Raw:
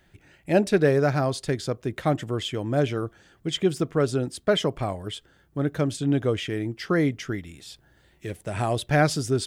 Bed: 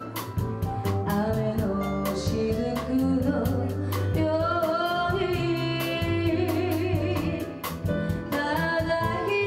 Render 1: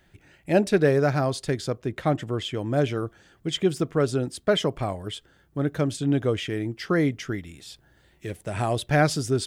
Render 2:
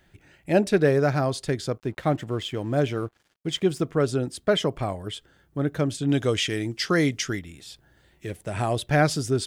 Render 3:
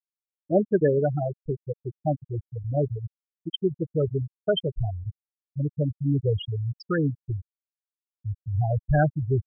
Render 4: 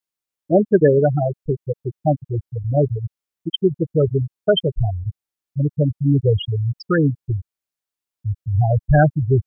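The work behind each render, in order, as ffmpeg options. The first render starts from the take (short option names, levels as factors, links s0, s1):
-filter_complex "[0:a]asettb=1/sr,asplit=3[s0][s1][s2];[s0]atrim=end=1.784[s3];[s1]atrim=start=1.78:end=2.57,asetpts=PTS-STARTPTS,afade=t=in:d=0.004:c=qsin,afade=t=out:st=0.786:d=0.004:c=qsin,highshelf=f=5700:g=-5.5[s4];[s2]atrim=start=2.566[s5];[s3][s4]acrossfade=d=0.004:c1=hsin:c2=qsin[s6];[s6][s5]acrossfade=d=0.004:c1=qsin:c2=hsin"
-filter_complex "[0:a]asettb=1/sr,asplit=3[s0][s1][s2];[s0]atrim=end=1.784[s3];[s1]atrim=start=1.78:end=3.85,asetpts=PTS-STARTPTS,afade=t=in:d=0.004:c=qsin,afade=t=out:st=2.066:d=0.004:c=qsin,aeval=exprs='sgn(val(0))*max(abs(val(0))-0.00237,0)':c=same[s4];[s2]atrim=start=3.846[s5];[s3][s4]acrossfade=d=0.004:c1=hsin:c2=qsin[s6];[s6][s5]acrossfade=d=0.004:c1=qsin:c2=hsin,asettb=1/sr,asplit=3[s7][s8][s9];[s7]atrim=end=6.094[s10];[s8]atrim=start=6.09:end=7.39,asetpts=PTS-STARTPTS,afade=t=in:d=0.004:c=qsin,afade=t=out:st=1.296:d=0.004:c=qsin,equalizer=f=6500:w=0.43:g=12.5[s11];[s9]atrim=start=7.386[s12];[s10][s11]acrossfade=d=0.004:c1=hsin:c2=qsin[s13];[s13][s12]acrossfade=d=0.004:c1=qsin:c2=hsin"
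-af "asubboost=boost=6.5:cutoff=86,afftfilt=real='re*gte(hypot(re,im),0.316)':imag='im*gte(hypot(re,im),0.316)':win_size=1024:overlap=0.75"
-af "volume=2.37,alimiter=limit=0.708:level=0:latency=1"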